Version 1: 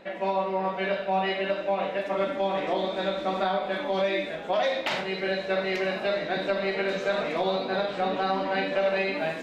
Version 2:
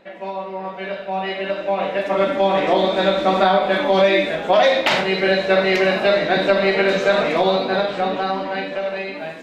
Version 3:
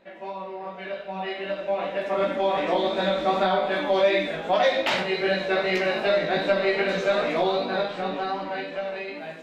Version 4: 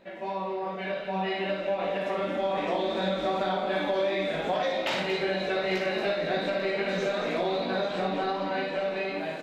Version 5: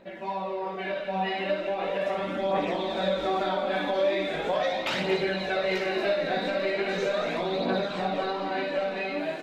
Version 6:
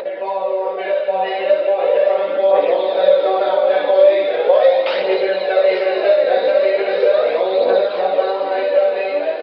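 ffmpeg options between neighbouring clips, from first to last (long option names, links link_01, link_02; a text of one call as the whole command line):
ffmpeg -i in.wav -af "dynaudnorm=framelen=290:gausssize=13:maxgain=14.5dB,volume=-1.5dB" out.wav
ffmpeg -i in.wav -af "flanger=delay=16.5:depth=2.2:speed=2.6,volume=-3.5dB" out.wav
ffmpeg -i in.wav -filter_complex "[0:a]equalizer=frequency=1400:width=0.36:gain=-3,acompressor=threshold=-30dB:ratio=6,asplit=2[link_01][link_02];[link_02]aecho=0:1:58|229|843:0.473|0.335|0.224[link_03];[link_01][link_03]amix=inputs=2:normalize=0,volume=3.5dB" out.wav
ffmpeg -i in.wav -af "aphaser=in_gain=1:out_gain=1:delay=4.2:decay=0.39:speed=0.39:type=triangular" out.wav
ffmpeg -i in.wav -af "highpass=frequency=500:width_type=q:width=6,acompressor=mode=upward:threshold=-23dB:ratio=2.5,aresample=11025,aresample=44100,volume=4.5dB" out.wav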